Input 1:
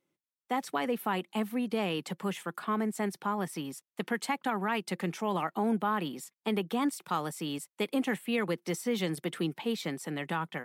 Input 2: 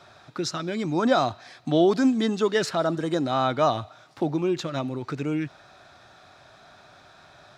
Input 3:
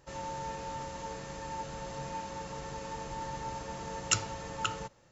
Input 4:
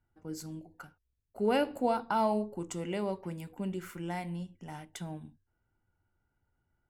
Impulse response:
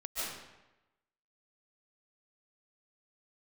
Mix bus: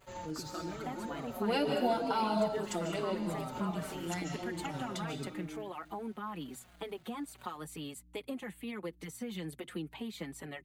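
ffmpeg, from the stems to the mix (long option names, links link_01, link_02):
-filter_complex "[0:a]aeval=exprs='val(0)+0.00158*(sin(2*PI*60*n/s)+sin(2*PI*2*60*n/s)/2+sin(2*PI*3*60*n/s)/3+sin(2*PI*4*60*n/s)/4+sin(2*PI*5*60*n/s)/5)':channel_layout=same,adelay=350,volume=-1.5dB[link_01];[1:a]highshelf=frequency=2800:gain=-9.5,acompressor=threshold=-30dB:ratio=6,aeval=exprs='val(0)*gte(abs(val(0)),0.00398)':channel_layout=same,volume=-4.5dB,asplit=2[link_02][link_03];[link_03]volume=-11dB[link_04];[2:a]volume=-1.5dB,asplit=2[link_05][link_06];[link_06]volume=-18.5dB[link_07];[3:a]equalizer=frequency=4100:width=1.6:gain=10,volume=-2.5dB,asplit=3[link_08][link_09][link_10];[link_09]volume=-5dB[link_11];[link_10]apad=whole_len=225414[link_12];[link_05][link_12]sidechaincompress=threshold=-49dB:ratio=8:attack=16:release=196[link_13];[link_01][link_02][link_13]amix=inputs=3:normalize=0,bandreject=frequency=5400:width=5.3,acompressor=threshold=-35dB:ratio=4,volume=0dB[link_14];[4:a]atrim=start_sample=2205[link_15];[link_04][link_07][link_11]amix=inputs=3:normalize=0[link_16];[link_16][link_15]afir=irnorm=-1:irlink=0[link_17];[link_08][link_14][link_17]amix=inputs=3:normalize=0,asplit=2[link_18][link_19];[link_19]adelay=4.8,afreqshift=-2.3[link_20];[link_18][link_20]amix=inputs=2:normalize=1"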